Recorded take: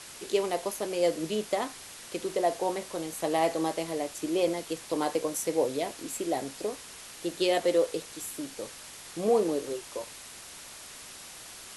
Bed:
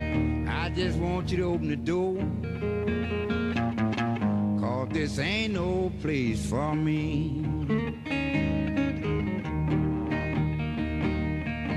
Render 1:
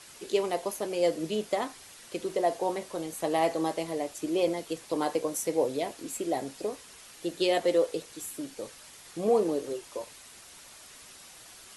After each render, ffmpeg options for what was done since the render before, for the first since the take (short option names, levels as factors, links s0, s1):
-af "afftdn=nr=6:nf=-46"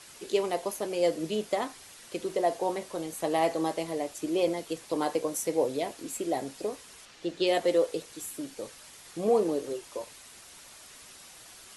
-filter_complex "[0:a]asettb=1/sr,asplit=3[s0][s1][s2];[s0]atrim=end=7.054[s3];[s1]atrim=start=7.05:end=7.47,asetpts=PTS-STARTPTS,afade=t=in:d=0.004:c=qsin,afade=t=out:st=0.416:d=0.004:c=qsin,lowpass=5500[s4];[s2]atrim=start=7.466[s5];[s3][s4]acrossfade=d=0.004:c1=hsin:c2=qsin[s6];[s6][s5]acrossfade=d=0.004:c1=qsin:c2=hsin"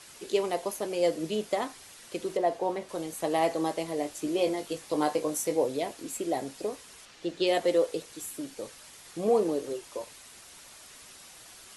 -filter_complex "[0:a]asettb=1/sr,asplit=3[s0][s1][s2];[s0]atrim=end=2.374[s3];[s1]atrim=start=2.37:end=2.89,asetpts=PTS-STARTPTS,afade=t=in:d=0.004:c=qsin,afade=t=out:st=0.516:d=0.004:c=qsin,highshelf=f=5100:g=-11[s4];[s2]atrim=start=2.886[s5];[s3][s4]acrossfade=d=0.004:c1=hsin:c2=qsin[s6];[s6][s5]acrossfade=d=0.004:c1=qsin:c2=hsin,asettb=1/sr,asplit=3[s7][s8][s9];[s7]atrim=end=3.964[s10];[s8]atrim=start=3.96:end=5.56,asetpts=PTS-STARTPTS,afade=t=in:d=0.004:c=qsin,afade=t=out:st=1.596:d=0.004:c=qsin,asplit=2[s11][s12];[s12]adelay=20,volume=0.501[s13];[s11][s13]amix=inputs=2:normalize=0,atrim=end_sample=70560[s14];[s9]atrim=start=5.556[s15];[s10][s14]acrossfade=d=0.004:c1=hsin:c2=qsin[s16];[s16][s15]acrossfade=d=0.004:c1=qsin:c2=hsin"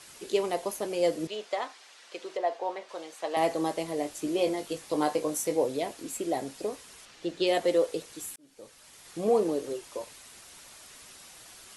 -filter_complex "[0:a]asettb=1/sr,asplit=3[s0][s1][s2];[s0]atrim=end=1.274[s3];[s1]atrim=start=1.27:end=3.37,asetpts=PTS-STARTPTS,afade=t=in:d=0.004:c=qsin,afade=t=out:st=2.096:d=0.004:c=qsin,highpass=560,lowpass=5500[s4];[s2]atrim=start=3.366[s5];[s3][s4]acrossfade=d=0.004:c1=hsin:c2=qsin[s6];[s6][s5]acrossfade=d=0.004:c1=qsin:c2=hsin,asplit=2[s7][s8];[s7]atrim=end=8.36,asetpts=PTS-STARTPTS,afade=t=out:st=8.356:d=0.004:c=hsin[s9];[s8]atrim=start=8.36,asetpts=PTS-STARTPTS,afade=t=in:d=0.8[s10];[s9][s10]concat=n=2:v=0:a=1"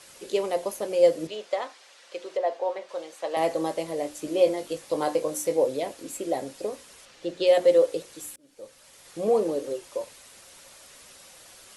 -af "equalizer=f=540:w=7:g=10,bandreject=f=60:t=h:w=6,bandreject=f=120:t=h:w=6,bandreject=f=180:t=h:w=6,bandreject=f=240:t=h:w=6,bandreject=f=300:t=h:w=6,bandreject=f=360:t=h:w=6"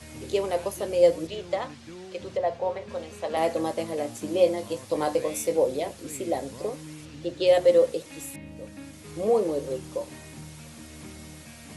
-filter_complex "[1:a]volume=0.158[s0];[0:a][s0]amix=inputs=2:normalize=0"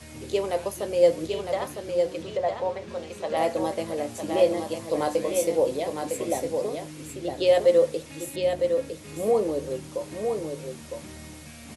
-af "aecho=1:1:957:0.531"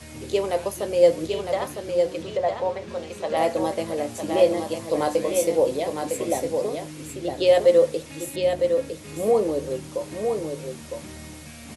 -af "volume=1.33"